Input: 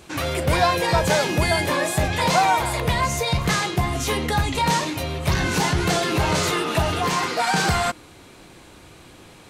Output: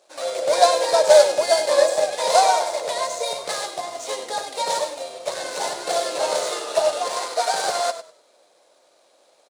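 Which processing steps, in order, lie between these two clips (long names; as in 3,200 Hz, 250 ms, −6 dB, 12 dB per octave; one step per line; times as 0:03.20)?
running median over 9 samples
high-pass with resonance 580 Hz, resonance Q 6.4
flat-topped bell 6,200 Hz +16 dB
on a send: echo with shifted repeats 99 ms, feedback 35%, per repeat −31 Hz, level −8 dB
on the sum: expander for the loud parts 1.5 to 1, over −32 dBFS
level −3 dB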